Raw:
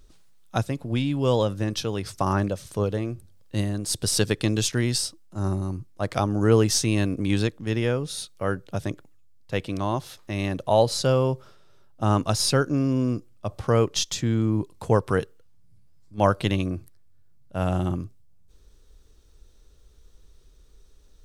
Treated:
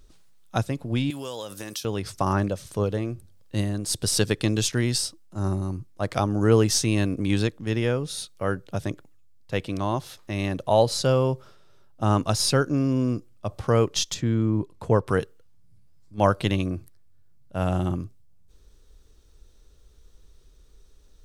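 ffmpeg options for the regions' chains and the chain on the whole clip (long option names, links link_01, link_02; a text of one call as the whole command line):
ffmpeg -i in.wav -filter_complex "[0:a]asettb=1/sr,asplit=3[link_01][link_02][link_03];[link_01]atrim=end=1.104[link_04];[link_02]atrim=start=1.1:end=1.85,asetpts=PTS-STARTPTS,afade=type=in:duration=0.004:curve=qsin,afade=type=out:start_time=0.746:duration=0.004:curve=qsin,highpass=59,aemphasis=mode=production:type=riaa,acompressor=threshold=-30dB:ratio=6:attack=3.2:release=140:knee=1:detection=peak[link_05];[link_03]atrim=start=1.846[link_06];[link_04][link_05]acrossfade=duration=0.004:curve1=hsin:curve2=qsin[link_07];[link_07][link_06]acrossfade=duration=0.004:curve1=qsin:curve2=hsin,asettb=1/sr,asplit=3[link_08][link_09][link_10];[link_08]atrim=end=14.144[link_11];[link_09]atrim=start=14.14:end=15.08,asetpts=PTS-STARTPTS,afade=type=in:duration=0.004:curve=qsin,afade=type=out:start_time=0.936:duration=0.004:curve=qsin,highshelf=frequency=3500:gain=-9,bandreject=frequency=790:width=12[link_12];[link_10]atrim=start=15.076[link_13];[link_11][link_12]acrossfade=duration=0.004:curve1=hsin:curve2=qsin[link_14];[link_14][link_13]acrossfade=duration=0.004:curve1=qsin:curve2=hsin" out.wav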